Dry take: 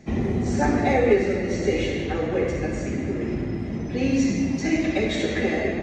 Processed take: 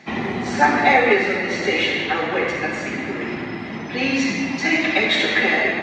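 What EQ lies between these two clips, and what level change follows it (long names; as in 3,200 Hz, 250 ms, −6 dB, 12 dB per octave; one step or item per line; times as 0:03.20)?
high-pass filter 170 Hz 12 dB per octave
flat-topped bell 1,900 Hz +12.5 dB 2.9 octaves
0.0 dB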